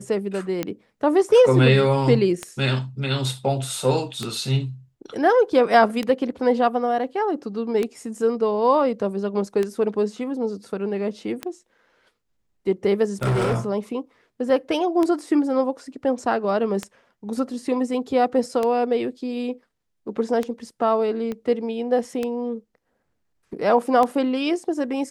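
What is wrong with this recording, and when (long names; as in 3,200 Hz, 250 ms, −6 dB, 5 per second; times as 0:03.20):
scratch tick 33 1/3 rpm −11 dBFS
0:13.22–0:13.56: clipping −18 dBFS
0:21.32: click −18 dBFS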